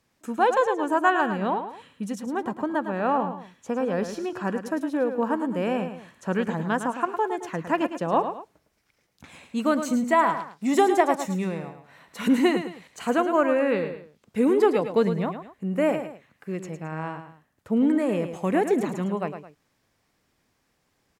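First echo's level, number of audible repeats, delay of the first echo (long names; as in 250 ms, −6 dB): −9.0 dB, 2, 108 ms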